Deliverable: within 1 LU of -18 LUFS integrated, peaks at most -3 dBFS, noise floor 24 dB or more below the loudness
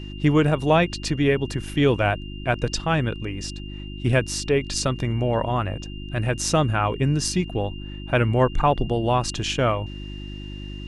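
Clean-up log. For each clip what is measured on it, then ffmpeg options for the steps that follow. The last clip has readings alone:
hum 50 Hz; harmonics up to 350 Hz; hum level -32 dBFS; steady tone 2800 Hz; tone level -42 dBFS; loudness -23.0 LUFS; peak -6.0 dBFS; loudness target -18.0 LUFS
-> -af "bandreject=f=50:t=h:w=4,bandreject=f=100:t=h:w=4,bandreject=f=150:t=h:w=4,bandreject=f=200:t=h:w=4,bandreject=f=250:t=h:w=4,bandreject=f=300:t=h:w=4,bandreject=f=350:t=h:w=4"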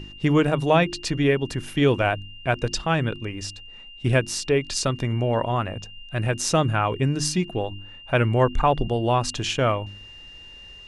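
hum none; steady tone 2800 Hz; tone level -42 dBFS
-> -af "bandreject=f=2.8k:w=30"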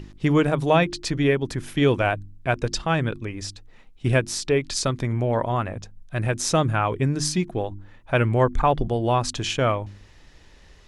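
steady tone none; loudness -23.5 LUFS; peak -6.5 dBFS; loudness target -18.0 LUFS
-> -af "volume=5.5dB,alimiter=limit=-3dB:level=0:latency=1"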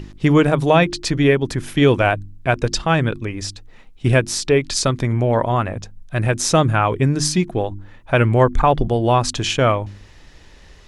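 loudness -18.0 LUFS; peak -3.0 dBFS; noise floor -45 dBFS

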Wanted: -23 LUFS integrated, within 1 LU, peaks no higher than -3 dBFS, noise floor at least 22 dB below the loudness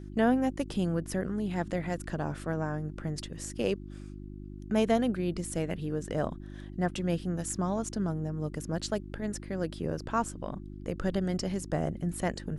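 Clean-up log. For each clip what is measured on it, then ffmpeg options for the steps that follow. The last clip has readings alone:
hum 50 Hz; harmonics up to 350 Hz; hum level -40 dBFS; loudness -32.5 LUFS; peak -12.0 dBFS; loudness target -23.0 LUFS
-> -af "bandreject=f=50:t=h:w=4,bandreject=f=100:t=h:w=4,bandreject=f=150:t=h:w=4,bandreject=f=200:t=h:w=4,bandreject=f=250:t=h:w=4,bandreject=f=300:t=h:w=4,bandreject=f=350:t=h:w=4"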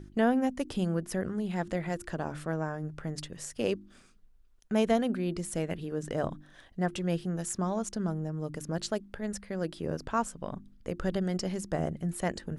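hum none; loudness -33.0 LUFS; peak -12.0 dBFS; loudness target -23.0 LUFS
-> -af "volume=10dB,alimiter=limit=-3dB:level=0:latency=1"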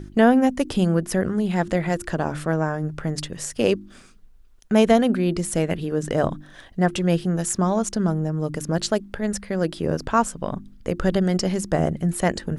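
loudness -23.0 LUFS; peak -3.0 dBFS; noise floor -48 dBFS

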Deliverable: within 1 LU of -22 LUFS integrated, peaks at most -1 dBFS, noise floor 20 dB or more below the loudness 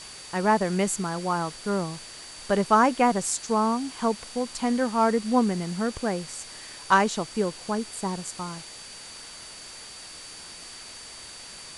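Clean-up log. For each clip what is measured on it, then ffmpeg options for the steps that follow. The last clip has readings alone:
steady tone 4600 Hz; tone level -45 dBFS; noise floor -43 dBFS; noise floor target -46 dBFS; loudness -25.5 LUFS; peak -6.5 dBFS; loudness target -22.0 LUFS
-> -af "bandreject=f=4.6k:w=30"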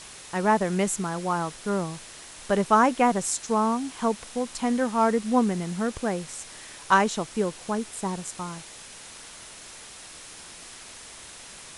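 steady tone none; noise floor -45 dBFS; noise floor target -46 dBFS
-> -af "afftdn=nr=6:nf=-45"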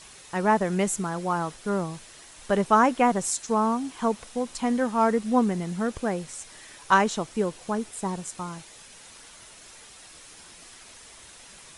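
noise floor -49 dBFS; loudness -25.5 LUFS; peak -6.5 dBFS; loudness target -22.0 LUFS
-> -af "volume=3.5dB"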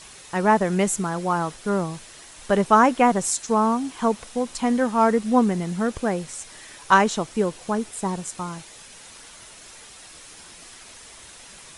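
loudness -22.0 LUFS; peak -3.0 dBFS; noise floor -45 dBFS

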